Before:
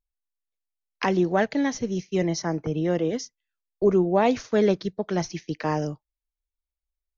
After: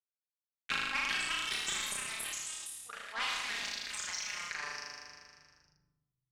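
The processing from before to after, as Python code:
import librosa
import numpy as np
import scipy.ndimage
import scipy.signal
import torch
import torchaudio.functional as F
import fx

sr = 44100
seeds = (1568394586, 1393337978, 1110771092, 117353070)

p1 = fx.speed_glide(x, sr, from_pct=151, to_pct=76)
p2 = fx.env_lowpass(p1, sr, base_hz=2200.0, full_db=-21.0)
p3 = scipy.signal.sosfilt(scipy.signal.butter(4, 1400.0, 'highpass', fs=sr, output='sos'), p2)
p4 = fx.high_shelf(p3, sr, hz=2200.0, db=5.0)
p5 = fx.level_steps(p4, sr, step_db=23)
p6 = p4 + (p5 * 10.0 ** (-2.0 / 20.0))
p7 = fx.power_curve(p6, sr, exponent=2.0)
p8 = fx.clip_asym(p7, sr, top_db=-26.5, bottom_db=-17.5)
p9 = fx.air_absorb(p8, sr, metres=59.0)
p10 = p9 + fx.room_flutter(p9, sr, wall_m=6.7, rt60_s=1.0, dry=0)
p11 = fx.echo_pitch(p10, sr, ms=507, semitones=3, count=2, db_per_echo=-3.0)
p12 = fx.room_shoebox(p11, sr, seeds[0], volume_m3=3400.0, walls='furnished', distance_m=1.3)
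y = fx.env_flatten(p12, sr, amount_pct=50)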